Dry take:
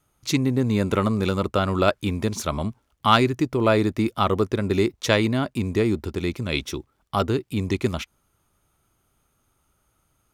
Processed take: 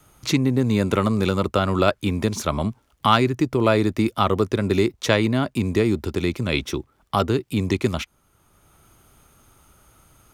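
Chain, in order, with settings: three-band squash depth 40%; gain +1.5 dB

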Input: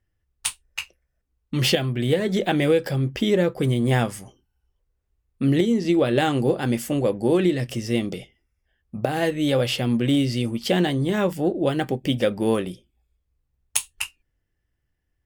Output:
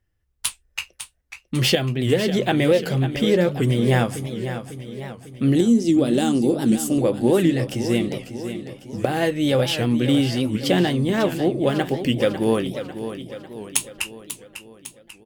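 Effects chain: 5.55–6.98 graphic EQ 125/250/500/1000/2000/8000 Hz -8/+7/-4/-5/-11/+8 dB; on a send: feedback echo 0.548 s, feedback 53%, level -10.5 dB; on the sum: record warp 78 rpm, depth 160 cents; gain +1.5 dB

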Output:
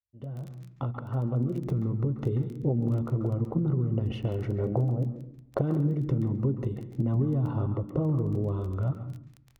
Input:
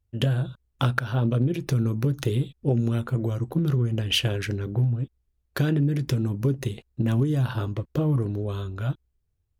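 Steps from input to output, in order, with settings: opening faded in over 2.77 s; 4.58–5.61 bell 600 Hz +13.5 dB 1.1 oct; compressor 2.5:1, threshold -33 dBFS, peak gain reduction 11.5 dB; polynomial smoothing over 65 samples; crackle 11/s -42 dBFS; vibrato 0.89 Hz 29 cents; on a send: reverb RT60 0.70 s, pre-delay 0.134 s, DRR 8 dB; on the sum: gain +5 dB

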